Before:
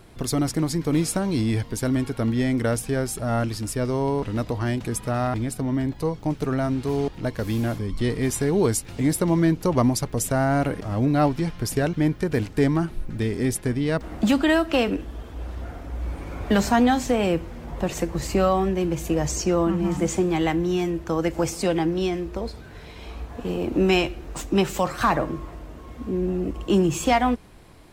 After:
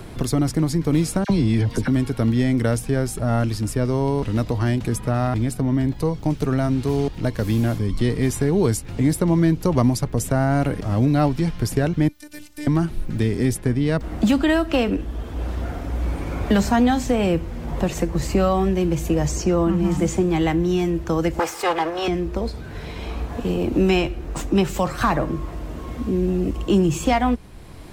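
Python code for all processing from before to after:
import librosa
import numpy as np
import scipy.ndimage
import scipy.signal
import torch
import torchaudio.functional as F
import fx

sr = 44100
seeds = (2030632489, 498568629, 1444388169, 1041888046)

y = fx.chain(x, sr, fx.high_shelf(hz=8200.0, db=-10.0),
    fx.dispersion(late='lows', ms=53.0, hz=1500.0),
    fx.band_squash(depth_pct=100), at=(1.24, 1.88))
y = fx.chain(y, sr, fx.pre_emphasis(coefficient=0.9),
    fx.robotise(hz=297.0), at=(12.08, 12.67))
y = fx.chain(y, sr, fx.lower_of_two(delay_ms=2.4),
    fx.highpass(hz=780.0, slope=6),
    fx.peak_eq(hz=1100.0, db=10.5, octaves=2.0), at=(21.39, 22.08))
y = fx.low_shelf(y, sr, hz=220.0, db=6.5)
y = fx.band_squash(y, sr, depth_pct=40)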